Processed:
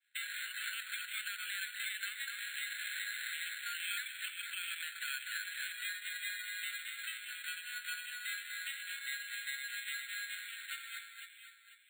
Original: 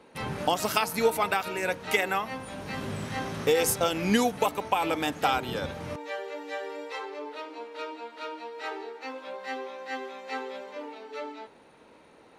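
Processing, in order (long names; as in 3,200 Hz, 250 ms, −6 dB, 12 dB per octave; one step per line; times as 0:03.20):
downward expander −41 dBFS
Chebyshev band-pass filter 1,400–2,900 Hz, order 5
downward compressor 2.5 to 1, threshold −50 dBFS, peak gain reduction 18 dB
brickwall limiter −40 dBFS, peak gain reduction 9 dB
on a send: delay that swaps between a low-pass and a high-pass 257 ms, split 1,900 Hz, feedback 57%, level −3 dB
on the sum: bad sample-rate conversion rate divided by 8×, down filtered, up hold
wrong playback speed 24 fps film run at 25 fps
level +9.5 dB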